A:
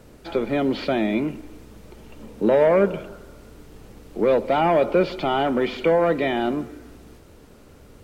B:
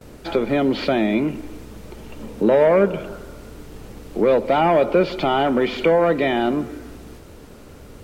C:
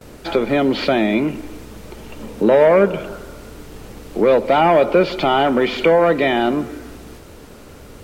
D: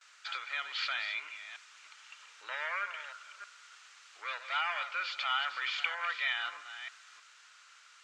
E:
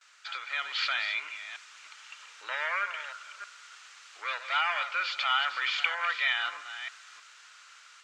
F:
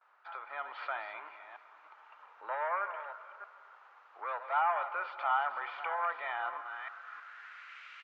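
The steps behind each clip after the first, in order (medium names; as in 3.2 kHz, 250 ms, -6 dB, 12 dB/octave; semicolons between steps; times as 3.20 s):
gate with hold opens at -40 dBFS; in parallel at +0.5 dB: compression, threshold -27 dBFS, peak gain reduction 13 dB
bass shelf 480 Hz -3.5 dB; trim +4.5 dB
chunks repeated in reverse 313 ms, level -10.5 dB; elliptic band-pass 1.3–7.2 kHz, stop band 80 dB; trim -8.5 dB
level rider gain up to 5 dB
low-pass sweep 860 Hz -> 2.4 kHz, 6.47–7.84 s; feedback delay 254 ms, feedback 46%, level -17.5 dB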